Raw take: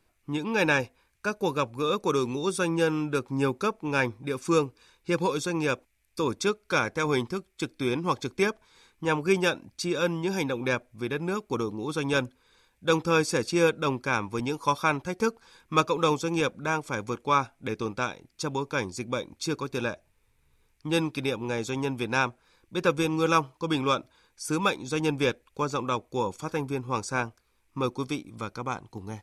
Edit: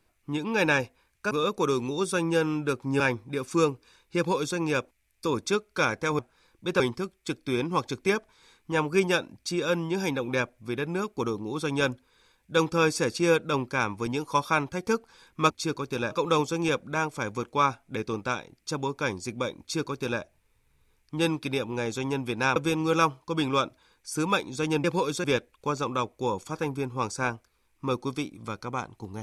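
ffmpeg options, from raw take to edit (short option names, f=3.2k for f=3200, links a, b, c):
-filter_complex "[0:a]asplit=10[a][b][c][d][e][f][g][h][i][j];[a]atrim=end=1.312[k];[b]atrim=start=1.768:end=3.462[l];[c]atrim=start=3.938:end=7.132[m];[d]atrim=start=22.278:end=22.892[n];[e]atrim=start=7.128:end=15.832[o];[f]atrim=start=19.318:end=19.932[p];[g]atrim=start=15.828:end=22.282[q];[h]atrim=start=22.888:end=25.172[r];[i]atrim=start=5.108:end=5.512[s];[j]atrim=start=25.168[t];[k][l]acrossfade=d=0.004:c1=hsin:c2=hsin[u];[u][m]acrossfade=d=0.004:c1=hsin:c2=hsin[v];[v][n]acrossfade=d=0.004:c1=hsin:c2=hsin[w];[w][o]acrossfade=d=0.004:c1=hsin:c2=hsin[x];[x][p]acrossfade=d=0.004:c1=hsin:c2=hsin[y];[y][q]acrossfade=d=0.004:c1=hsin:c2=hsin[z];[z][r]acrossfade=d=0.004:c1=hsin:c2=hsin[aa];[aa][s]acrossfade=d=0.004:c1=hsin:c2=hsin[ab];[ab][t]acrossfade=d=0.004:c1=hsin:c2=hsin"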